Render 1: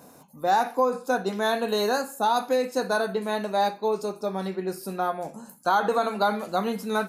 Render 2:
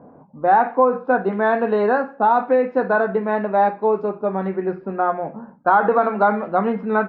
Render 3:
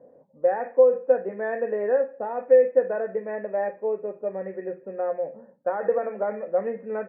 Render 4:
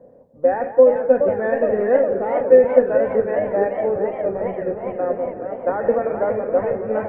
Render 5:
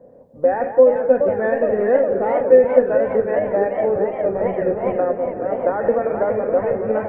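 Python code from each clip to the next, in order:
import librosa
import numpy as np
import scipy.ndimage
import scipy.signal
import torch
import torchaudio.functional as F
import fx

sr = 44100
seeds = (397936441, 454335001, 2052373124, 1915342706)

y1 = scipy.signal.sosfilt(scipy.signal.butter(4, 2000.0, 'lowpass', fs=sr, output='sos'), x)
y1 = fx.hum_notches(y1, sr, base_hz=60, count=3)
y1 = fx.env_lowpass(y1, sr, base_hz=770.0, full_db=-22.0)
y1 = y1 * 10.0 ** (7.0 / 20.0)
y2 = fx.formant_cascade(y1, sr, vowel='e')
y2 = y2 * 10.0 ** (3.0 / 20.0)
y3 = fx.octave_divider(y2, sr, octaves=1, level_db=-5.0)
y3 = fx.echo_tape(y3, sr, ms=171, feedback_pct=83, wet_db=-9.5, lp_hz=1300.0, drive_db=13.0, wow_cents=24)
y3 = fx.echo_warbled(y3, sr, ms=417, feedback_pct=71, rate_hz=2.8, cents=205, wet_db=-8.5)
y3 = y3 * 10.0 ** (4.5 / 20.0)
y4 = fx.recorder_agc(y3, sr, target_db=-10.0, rise_db_per_s=15.0, max_gain_db=30)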